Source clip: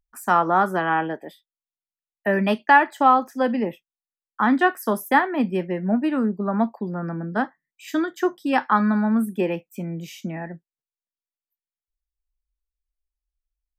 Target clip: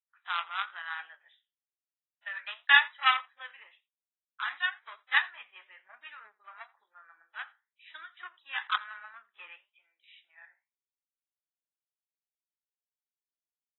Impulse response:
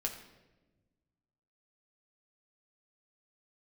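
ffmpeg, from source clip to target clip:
-filter_complex "[0:a]asettb=1/sr,asplit=3[a][b][c];[a]atrim=end=9.664[d];[b]atrim=start=9.66:end=10.38,asetpts=PTS-STARTPTS,afade=t=in:d=0.004:c=qsin,afade=t=out:st=0.716:d=0.004:c=qsin,acompressor=threshold=-35dB:ratio=6[e];[c]atrim=start=10.376[f];[d][e]acrossfade=d=0.004:c1=hsin:c2=qsin[g];[g][f]acrossfade=d=0.004:c1=qsin:c2=hsin,flanger=delay=8.6:depth=9.7:regen=68:speed=1:shape=triangular,aeval=exprs='0.422*(cos(1*acos(clip(val(0)/0.422,-1,1)))-cos(1*PI/2))+0.119*(cos(3*acos(clip(val(0)/0.422,-1,1)))-cos(3*PI/2))+0.00841*(cos(4*acos(clip(val(0)/0.422,-1,1)))-cos(4*PI/2))+0.00376*(cos(5*acos(clip(val(0)/0.422,-1,1)))-cos(5*PI/2))':c=same,highpass=f=1.4k:w=0.5412,highpass=f=1.4k:w=1.3066,acontrast=68,lowpass=9.2k,aecho=1:1:85:0.0668" -ar 24000 -c:a aac -b:a 16k

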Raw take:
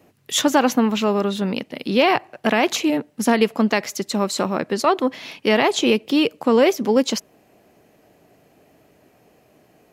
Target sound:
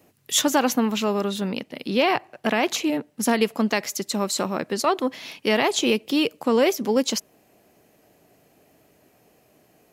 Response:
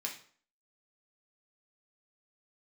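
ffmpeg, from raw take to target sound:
-af "asetnsamples=n=441:p=0,asendcmd='1.48 highshelf g 3;3.23 highshelf g 8',highshelf=f=5.2k:g=8.5,volume=-4dB"

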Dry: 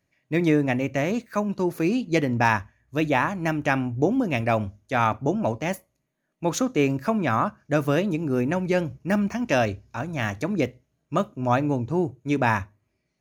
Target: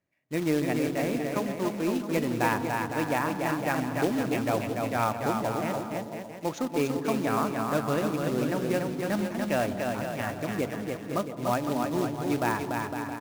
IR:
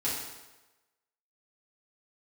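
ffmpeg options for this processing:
-filter_complex "[0:a]lowpass=f=1.9k:p=1,lowshelf=f=110:g=-10.5,acrusher=bits=3:mode=log:mix=0:aa=0.000001,aecho=1:1:290|507.5|670.6|793|884.7:0.631|0.398|0.251|0.158|0.1,asplit=2[a][b];[1:a]atrim=start_sample=2205,lowpass=1.2k,adelay=129[c];[b][c]afir=irnorm=-1:irlink=0,volume=-17.5dB[d];[a][d]amix=inputs=2:normalize=0,volume=-5dB"

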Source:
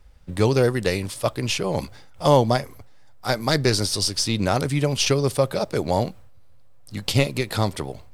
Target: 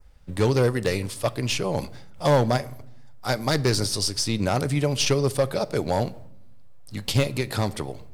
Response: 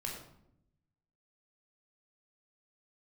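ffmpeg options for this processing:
-filter_complex "[0:a]adynamicequalizer=threshold=0.0141:dfrequency=3300:dqfactor=1.5:tfrequency=3300:tqfactor=1.5:attack=5:release=100:ratio=0.375:range=2:mode=cutabove:tftype=bell,volume=12.5dB,asoftclip=hard,volume=-12.5dB,asplit=2[a][b];[1:a]atrim=start_sample=2205,adelay=7[c];[b][c]afir=irnorm=-1:irlink=0,volume=-17dB[d];[a][d]amix=inputs=2:normalize=0,volume=-1.5dB"

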